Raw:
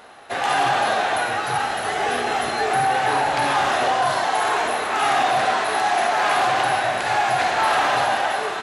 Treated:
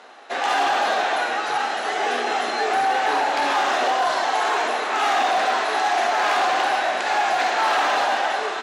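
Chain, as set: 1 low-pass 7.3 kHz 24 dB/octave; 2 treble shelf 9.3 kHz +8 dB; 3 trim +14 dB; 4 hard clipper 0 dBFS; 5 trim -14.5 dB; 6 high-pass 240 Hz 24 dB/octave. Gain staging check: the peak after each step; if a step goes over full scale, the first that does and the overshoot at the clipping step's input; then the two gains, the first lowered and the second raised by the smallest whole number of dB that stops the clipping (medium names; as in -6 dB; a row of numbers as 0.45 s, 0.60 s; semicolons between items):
-9.5 dBFS, -9.0 dBFS, +5.0 dBFS, 0.0 dBFS, -14.5 dBFS, -10.0 dBFS; step 3, 5.0 dB; step 3 +9 dB, step 5 -9.5 dB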